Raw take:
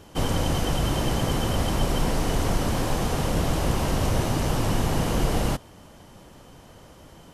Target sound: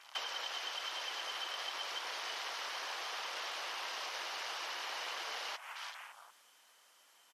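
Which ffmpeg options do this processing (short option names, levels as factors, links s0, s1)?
-filter_complex "[0:a]highpass=1400,asplit=2[s0][s1];[s1]asplit=7[s2][s3][s4][s5][s6][s7][s8];[s2]adelay=171,afreqshift=84,volume=0.266[s9];[s3]adelay=342,afreqshift=168,volume=0.164[s10];[s4]adelay=513,afreqshift=252,volume=0.102[s11];[s5]adelay=684,afreqshift=336,volume=0.0631[s12];[s6]adelay=855,afreqshift=420,volume=0.0394[s13];[s7]adelay=1026,afreqshift=504,volume=0.0243[s14];[s8]adelay=1197,afreqshift=588,volume=0.0151[s15];[s9][s10][s11][s12][s13][s14][s15]amix=inputs=7:normalize=0[s16];[s0][s16]amix=inputs=2:normalize=0,acompressor=threshold=0.00631:ratio=10,afwtdn=0.00224,volume=2.37" -ar 48000 -c:a libmp3lame -b:a 56k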